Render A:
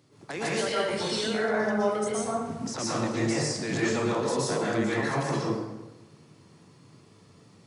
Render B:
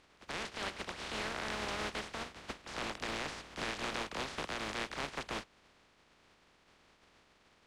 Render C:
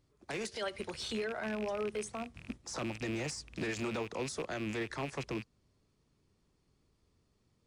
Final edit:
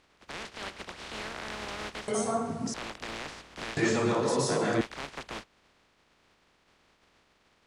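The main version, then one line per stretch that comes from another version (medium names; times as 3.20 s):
B
2.08–2.74 s: from A
3.77–4.81 s: from A
not used: C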